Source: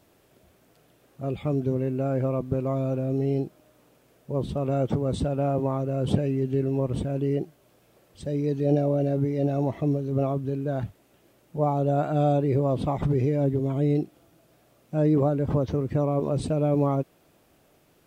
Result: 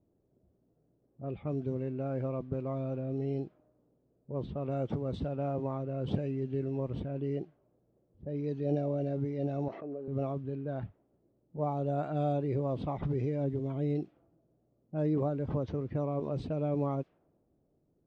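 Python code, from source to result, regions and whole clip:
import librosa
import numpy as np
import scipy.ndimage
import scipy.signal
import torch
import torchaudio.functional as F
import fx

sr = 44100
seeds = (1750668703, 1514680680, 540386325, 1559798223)

y = fx.chain(x, sr, fx.transient(attack_db=-10, sustain_db=-6),
    fx.cabinet(low_hz=380.0, low_slope=12, high_hz=5800.0, hz=(440.0, 970.0, 2000.0, 3400.0), db=(3, -7, -7, -10)),
    fx.env_flatten(amount_pct=70), at=(9.68, 10.08))
y = scipy.signal.sosfilt(scipy.signal.butter(2, 5300.0, 'lowpass', fs=sr, output='sos'), y)
y = fx.env_lowpass(y, sr, base_hz=390.0, full_db=-19.5)
y = y * 10.0 ** (-8.5 / 20.0)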